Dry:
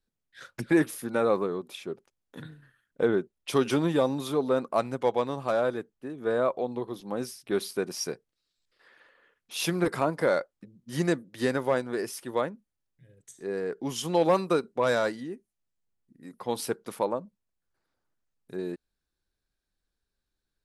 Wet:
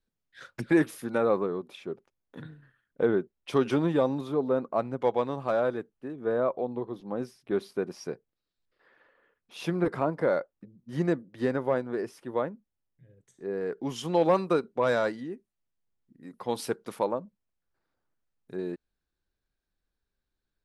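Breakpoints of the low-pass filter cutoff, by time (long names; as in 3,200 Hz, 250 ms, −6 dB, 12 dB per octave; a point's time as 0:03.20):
low-pass filter 6 dB per octave
4,900 Hz
from 0:01.18 2,100 Hz
from 0:04.21 1,000 Hz
from 0:05.02 2,500 Hz
from 0:06.16 1,200 Hz
from 0:13.61 3,000 Hz
from 0:16.34 6,100 Hz
from 0:17.11 3,100 Hz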